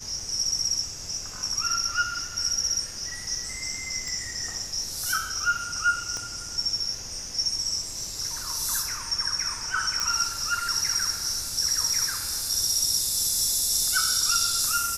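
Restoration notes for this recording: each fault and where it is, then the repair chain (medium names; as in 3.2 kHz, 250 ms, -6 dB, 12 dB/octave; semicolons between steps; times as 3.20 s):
4.08 s: pop
6.17 s: pop -20 dBFS
10.00 s: pop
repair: de-click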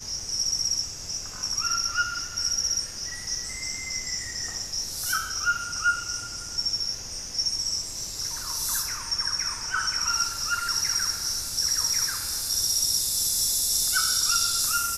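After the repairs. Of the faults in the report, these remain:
6.17 s: pop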